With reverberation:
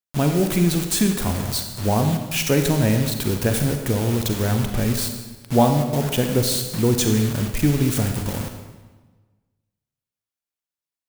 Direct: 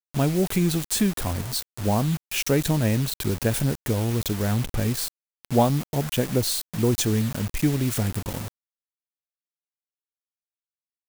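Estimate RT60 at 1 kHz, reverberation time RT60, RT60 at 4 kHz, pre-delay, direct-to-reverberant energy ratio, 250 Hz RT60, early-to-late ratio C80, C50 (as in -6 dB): 1.3 s, 1.3 s, 1.1 s, 36 ms, 5.0 dB, 1.4 s, 7.5 dB, 6.0 dB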